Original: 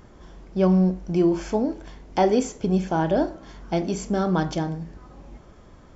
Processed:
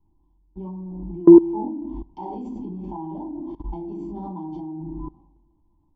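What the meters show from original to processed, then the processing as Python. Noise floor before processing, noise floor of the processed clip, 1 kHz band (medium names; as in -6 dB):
-49 dBFS, -64 dBFS, -7.5 dB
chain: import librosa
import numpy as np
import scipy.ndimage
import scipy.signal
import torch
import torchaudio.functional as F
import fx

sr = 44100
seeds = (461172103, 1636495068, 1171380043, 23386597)

p1 = fx.room_shoebox(x, sr, seeds[0], volume_m3=540.0, walls='furnished', distance_m=4.3)
p2 = fx.over_compress(p1, sr, threshold_db=-20.0, ratio=-1.0)
p3 = p1 + F.gain(torch.from_numpy(p2), -2.0).numpy()
p4 = fx.curve_eq(p3, sr, hz=(180.0, 330.0, 480.0, 970.0, 1400.0, 3100.0, 6300.0), db=(0, 12, -17, 12, -29, -8, -17))
p5 = fx.level_steps(p4, sr, step_db=20)
p6 = fx.high_shelf(p5, sr, hz=3700.0, db=-9.5)
p7 = fx.band_widen(p6, sr, depth_pct=70)
y = F.gain(torch.from_numpy(p7), -12.0).numpy()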